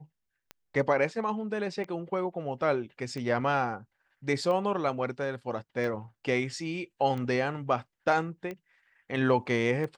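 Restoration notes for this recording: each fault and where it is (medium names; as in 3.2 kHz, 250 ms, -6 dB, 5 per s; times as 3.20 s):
tick 45 rpm -25 dBFS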